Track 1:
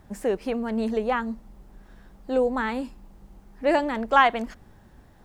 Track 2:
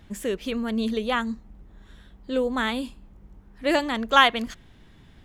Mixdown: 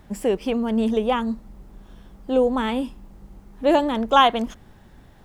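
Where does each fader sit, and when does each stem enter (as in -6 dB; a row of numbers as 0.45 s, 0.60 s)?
+2.5 dB, -5.0 dB; 0.00 s, 0.00 s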